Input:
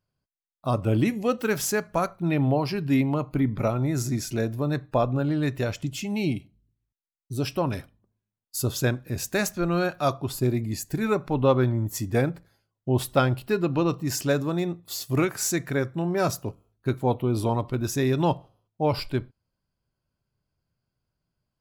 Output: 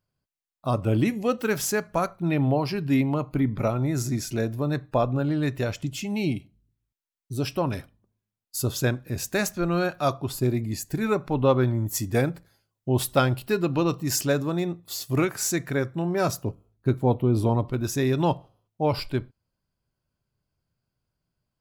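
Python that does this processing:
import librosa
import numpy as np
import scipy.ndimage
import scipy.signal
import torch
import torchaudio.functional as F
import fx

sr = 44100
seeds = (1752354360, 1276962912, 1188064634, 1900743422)

y = fx.high_shelf(x, sr, hz=3800.0, db=5.5, at=(11.67, 14.26))
y = fx.tilt_shelf(y, sr, db=4.0, hz=660.0, at=(16.44, 17.72))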